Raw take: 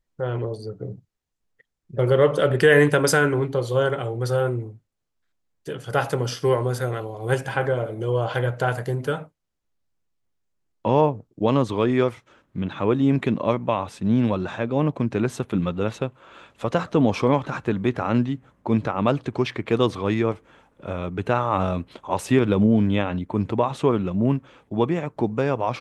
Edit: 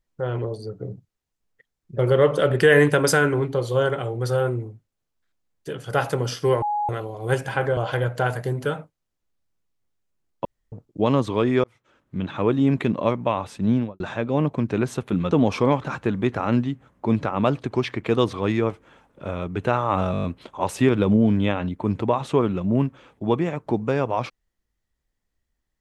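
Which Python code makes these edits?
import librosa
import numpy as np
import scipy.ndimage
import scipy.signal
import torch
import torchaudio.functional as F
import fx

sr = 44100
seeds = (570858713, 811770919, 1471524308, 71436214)

y = fx.studio_fade_out(x, sr, start_s=14.11, length_s=0.31)
y = fx.edit(y, sr, fx.bleep(start_s=6.62, length_s=0.27, hz=833.0, db=-21.0),
    fx.cut(start_s=7.77, length_s=0.42),
    fx.room_tone_fill(start_s=10.87, length_s=0.27),
    fx.fade_in_span(start_s=12.06, length_s=0.59),
    fx.cut(start_s=15.73, length_s=1.2),
    fx.stutter(start_s=21.74, slice_s=0.02, count=7), tone=tone)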